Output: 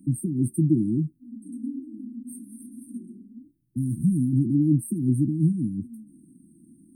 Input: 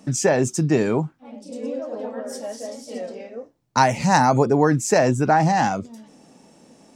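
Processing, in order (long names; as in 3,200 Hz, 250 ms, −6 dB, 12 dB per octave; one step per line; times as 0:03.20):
linear-phase brick-wall band-stop 360–8,400 Hz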